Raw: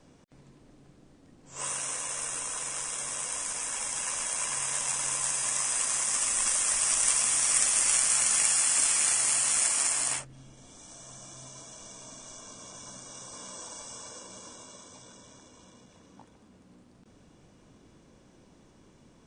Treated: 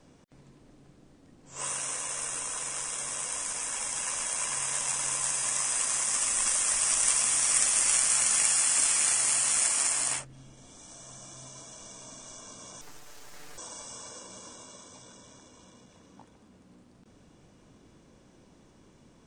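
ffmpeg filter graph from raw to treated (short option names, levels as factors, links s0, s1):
-filter_complex "[0:a]asettb=1/sr,asplit=3[s0][s1][s2];[s0]atrim=end=12.814[s3];[s1]atrim=start=12.81:end=13.58,asetpts=PTS-STARTPTS,afade=t=in:d=0.004:c=qsin,afade=t=out:st=0.766:d=0.004:c=qsin,acrossover=split=3600[s4][s5];[s5]acompressor=threshold=0.00224:ratio=4:attack=1:release=60[s6];[s4][s6]amix=inputs=2:normalize=0,aeval=exprs='abs(val(0))':c=same,aecho=1:1:6.8:0.68,atrim=end_sample=33957[s7];[s2]atrim=start=13.576[s8];[s3][s7]acrossfade=d=0.004:c1=hsin:c2=qsin[s9];[s9][s8]acrossfade=d=0.004:c1=qsin:c2=hsin"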